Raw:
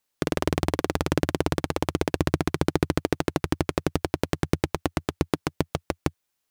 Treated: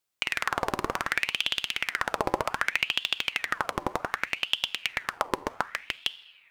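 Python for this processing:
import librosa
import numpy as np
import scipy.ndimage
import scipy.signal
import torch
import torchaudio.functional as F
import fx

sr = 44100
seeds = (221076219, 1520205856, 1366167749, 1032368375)

y = fx.rev_fdn(x, sr, rt60_s=1.5, lf_ratio=1.0, hf_ratio=0.45, size_ms=27.0, drr_db=15.5)
y = fx.ring_lfo(y, sr, carrier_hz=1900.0, swing_pct=65, hz=0.65)
y = F.gain(torch.from_numpy(y), -1.0).numpy()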